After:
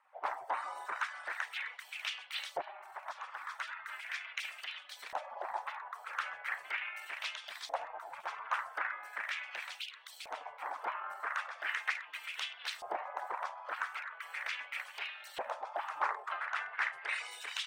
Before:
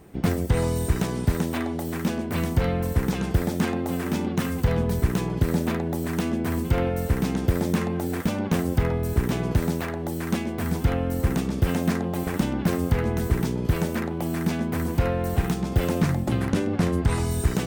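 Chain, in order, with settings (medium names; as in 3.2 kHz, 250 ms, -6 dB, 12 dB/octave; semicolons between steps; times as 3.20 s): resonances exaggerated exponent 1.5; 2.61–4.97 s: high-pass 270 Hz 6 dB/octave; spectral gate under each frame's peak -30 dB weak; LFO band-pass saw up 0.39 Hz 660–4000 Hz; trim +16 dB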